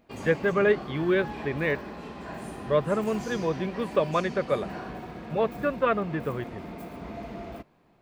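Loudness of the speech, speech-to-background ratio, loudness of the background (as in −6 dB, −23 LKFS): −27.5 LKFS, 11.5 dB, −39.0 LKFS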